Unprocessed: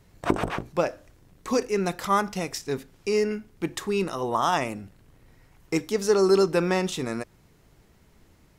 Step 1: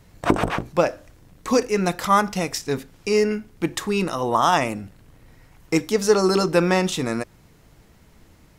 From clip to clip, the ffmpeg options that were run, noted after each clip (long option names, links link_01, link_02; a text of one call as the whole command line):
ffmpeg -i in.wav -af "bandreject=frequency=390:width=12,volume=5.5dB" out.wav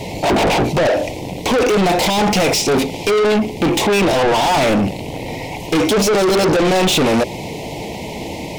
ffmpeg -i in.wav -filter_complex "[0:a]asplit=2[link_01][link_02];[link_02]highpass=frequency=720:poles=1,volume=38dB,asoftclip=type=tanh:threshold=-1dB[link_03];[link_01][link_03]amix=inputs=2:normalize=0,lowpass=frequency=1500:poles=1,volume=-6dB,asuperstop=centerf=1400:order=8:qfactor=1.2,asoftclip=type=tanh:threshold=-18.5dB,volume=6dB" out.wav